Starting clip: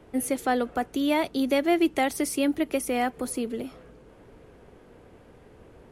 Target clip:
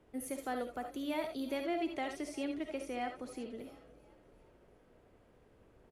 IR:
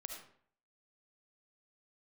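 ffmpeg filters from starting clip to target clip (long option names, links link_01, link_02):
-filter_complex "[0:a]asettb=1/sr,asplit=3[link_01][link_02][link_03];[link_01]atrim=end=1.574[link_04];[link_02]atrim=start=1.57:end=3.58,asetpts=PTS-STARTPTS,afade=type=in:duration=0.004:curve=qsin,afade=type=out:start_time=2.006:duration=0.004:curve=qsin,lowpass=6400[link_05];[link_03]atrim=start=3.576[link_06];[link_04][link_05]acrossfade=duration=0.004:curve1=hsin:curve2=qsin[link_07];[link_07][link_06]acrossfade=duration=0.004:curve1=qsin:curve2=hsin,asplit=5[link_08][link_09][link_10][link_11][link_12];[link_09]adelay=357,afreqshift=39,volume=-21dB[link_13];[link_10]adelay=714,afreqshift=78,volume=-26.2dB[link_14];[link_11]adelay=1071,afreqshift=117,volume=-31.4dB[link_15];[link_12]adelay=1428,afreqshift=156,volume=-36.6dB[link_16];[link_08][link_13][link_14][link_15][link_16]amix=inputs=5:normalize=0[link_17];[1:a]atrim=start_sample=2205,atrim=end_sample=3969[link_18];[link_17][link_18]afir=irnorm=-1:irlink=0,volume=-8.5dB"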